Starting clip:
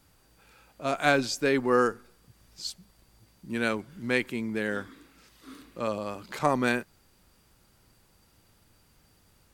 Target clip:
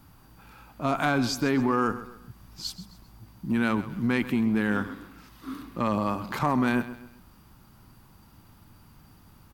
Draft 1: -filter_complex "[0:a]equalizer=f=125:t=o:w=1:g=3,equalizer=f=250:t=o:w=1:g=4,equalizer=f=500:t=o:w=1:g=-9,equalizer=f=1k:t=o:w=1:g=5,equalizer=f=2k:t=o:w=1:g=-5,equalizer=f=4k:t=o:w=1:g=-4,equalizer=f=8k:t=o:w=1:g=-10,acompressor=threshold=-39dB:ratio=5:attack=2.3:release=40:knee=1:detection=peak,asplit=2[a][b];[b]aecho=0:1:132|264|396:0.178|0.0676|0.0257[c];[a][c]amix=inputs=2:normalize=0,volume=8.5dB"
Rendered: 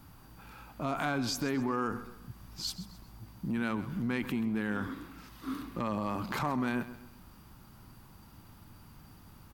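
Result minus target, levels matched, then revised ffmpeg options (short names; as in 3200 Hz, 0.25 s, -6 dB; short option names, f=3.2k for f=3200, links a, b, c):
compressor: peak gain reduction +7.5 dB
-filter_complex "[0:a]equalizer=f=125:t=o:w=1:g=3,equalizer=f=250:t=o:w=1:g=4,equalizer=f=500:t=o:w=1:g=-9,equalizer=f=1k:t=o:w=1:g=5,equalizer=f=2k:t=o:w=1:g=-5,equalizer=f=4k:t=o:w=1:g=-4,equalizer=f=8k:t=o:w=1:g=-10,acompressor=threshold=-29.5dB:ratio=5:attack=2.3:release=40:knee=1:detection=peak,asplit=2[a][b];[b]aecho=0:1:132|264|396:0.178|0.0676|0.0257[c];[a][c]amix=inputs=2:normalize=0,volume=8.5dB"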